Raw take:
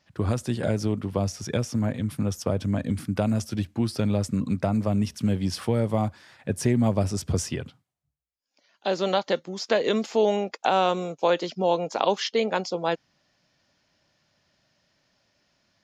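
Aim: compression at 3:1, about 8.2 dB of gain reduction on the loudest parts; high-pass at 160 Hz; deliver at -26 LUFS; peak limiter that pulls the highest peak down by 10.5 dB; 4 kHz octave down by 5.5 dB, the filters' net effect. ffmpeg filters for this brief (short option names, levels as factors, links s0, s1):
-af "highpass=160,equalizer=f=4000:t=o:g=-7.5,acompressor=threshold=0.0398:ratio=3,volume=2.66,alimiter=limit=0.178:level=0:latency=1"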